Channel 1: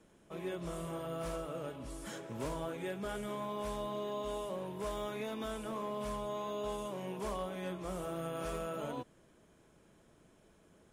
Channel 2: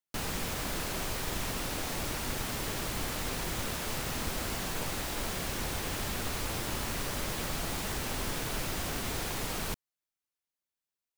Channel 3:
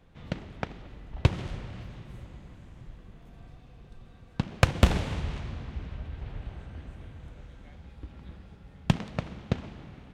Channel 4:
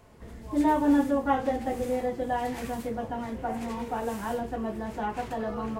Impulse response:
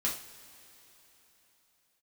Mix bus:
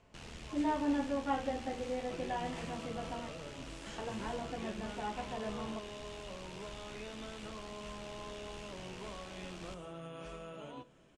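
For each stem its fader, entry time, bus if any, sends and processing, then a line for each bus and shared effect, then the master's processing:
-3.0 dB, 1.80 s, send -12.5 dB, compressor, threshold -43 dBFS, peak gain reduction 8.5 dB
-13.5 dB, 0.00 s, no send, ring modulator 41 Hz
off
-11.0 dB, 0.00 s, muted 3.29–3.98, send -13.5 dB, dry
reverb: on, pre-delay 3 ms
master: LPF 8100 Hz 24 dB/oct; bell 2800 Hz +6.5 dB 0.59 oct

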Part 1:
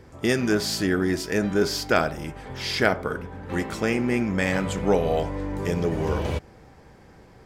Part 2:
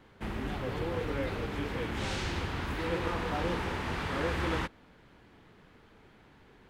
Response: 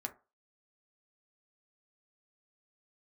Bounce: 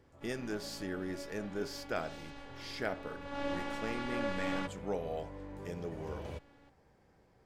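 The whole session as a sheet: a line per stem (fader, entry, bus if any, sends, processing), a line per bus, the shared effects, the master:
-17.0 dB, 0.00 s, no send, dry
3.19 s -13.5 dB -> 3.41 s -3.5 dB, 0.00 s, no send, LPF 8200 Hz 12 dB/oct; robotiser 282 Hz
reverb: off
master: bell 610 Hz +3 dB 0.89 oct

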